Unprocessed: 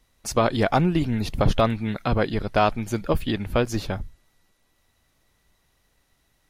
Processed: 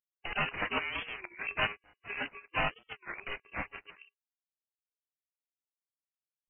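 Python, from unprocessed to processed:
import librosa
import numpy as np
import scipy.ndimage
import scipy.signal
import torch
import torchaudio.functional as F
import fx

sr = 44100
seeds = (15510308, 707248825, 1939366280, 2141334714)

p1 = fx.freq_snap(x, sr, grid_st=6)
p2 = fx.hum_notches(p1, sr, base_hz=50, count=3)
p3 = fx.noise_reduce_blind(p2, sr, reduce_db=27)
p4 = fx.leveller(p3, sr, passes=2)
p5 = fx.schmitt(p4, sr, flips_db=-16.5)
p6 = p4 + (p5 * librosa.db_to_amplitude(-12.0))
p7 = fx.spec_gate(p6, sr, threshold_db=-25, keep='weak')
p8 = fx.freq_invert(p7, sr, carrier_hz=2900)
y = fx.record_warp(p8, sr, rpm=33.33, depth_cents=250.0)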